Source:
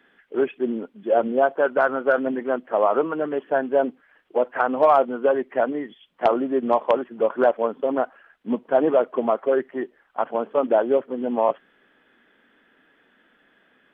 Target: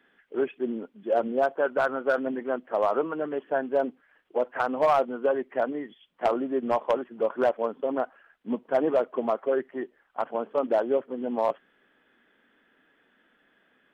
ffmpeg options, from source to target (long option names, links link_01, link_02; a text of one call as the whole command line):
ffmpeg -i in.wav -af "asoftclip=type=hard:threshold=-10dB,volume=-5dB" out.wav